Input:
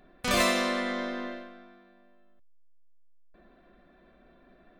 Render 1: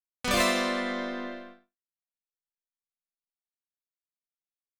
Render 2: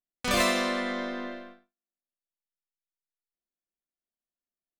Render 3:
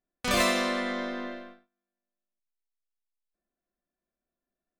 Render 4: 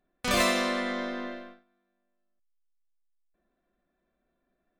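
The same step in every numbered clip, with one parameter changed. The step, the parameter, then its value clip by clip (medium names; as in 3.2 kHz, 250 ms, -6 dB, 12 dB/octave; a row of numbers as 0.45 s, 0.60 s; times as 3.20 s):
gate, range: -60 dB, -46 dB, -32 dB, -19 dB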